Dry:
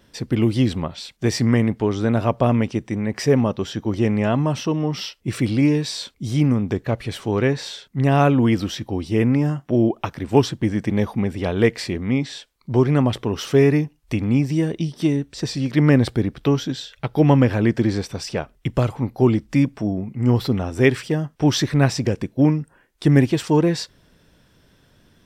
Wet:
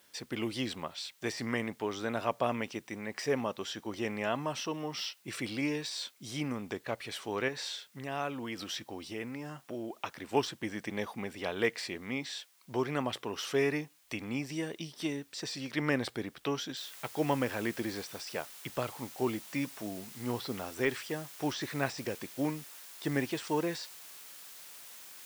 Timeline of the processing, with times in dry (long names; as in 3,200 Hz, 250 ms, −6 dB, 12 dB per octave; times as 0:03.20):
0:07.48–0:10.06: downward compressor 3 to 1, threshold −21 dBFS
0:16.77: noise floor change −61 dB −43 dB
whole clip: high-pass filter 1,000 Hz 6 dB per octave; de-essing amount 70%; level −5 dB